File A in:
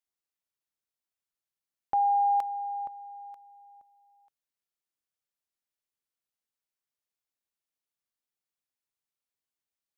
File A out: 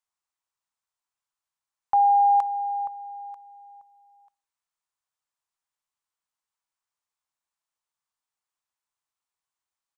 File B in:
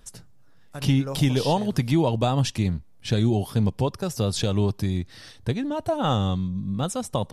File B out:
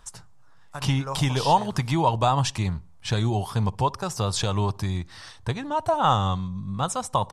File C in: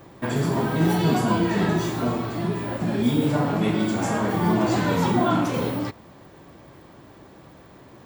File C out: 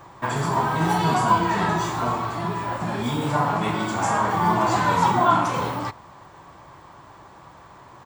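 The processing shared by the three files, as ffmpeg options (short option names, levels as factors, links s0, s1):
-filter_complex "[0:a]equalizer=f=250:t=o:w=1:g=-7,equalizer=f=500:t=o:w=1:g=-4,equalizer=f=1000:t=o:w=1:g=11,equalizer=f=8000:t=o:w=1:g=7,equalizer=f=16000:t=o:w=1:g=-10,asplit=2[s0][s1];[s1]adelay=62,lowpass=f=840:p=1,volume=0.0794,asplit=2[s2][s3];[s3]adelay=62,lowpass=f=840:p=1,volume=0.5,asplit=2[s4][s5];[s5]adelay=62,lowpass=f=840:p=1,volume=0.5[s6];[s2][s4][s6]amix=inputs=3:normalize=0[s7];[s0][s7]amix=inputs=2:normalize=0"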